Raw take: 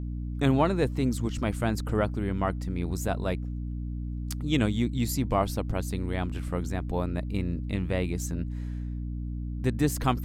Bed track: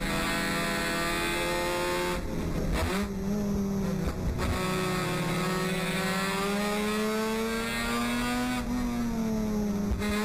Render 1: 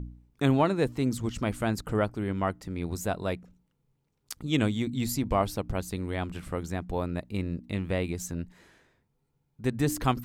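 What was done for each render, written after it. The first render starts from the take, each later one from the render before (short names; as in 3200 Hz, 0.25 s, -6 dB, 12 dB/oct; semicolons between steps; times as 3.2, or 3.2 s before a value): de-hum 60 Hz, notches 5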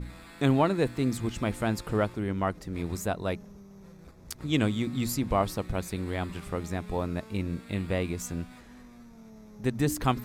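add bed track -20.5 dB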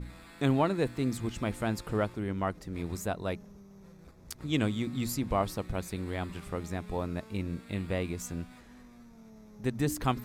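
gain -3 dB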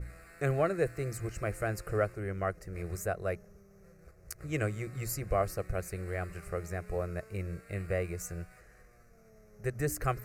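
in parallel at -11 dB: crossover distortion -52.5 dBFS; on the sum: fixed phaser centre 930 Hz, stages 6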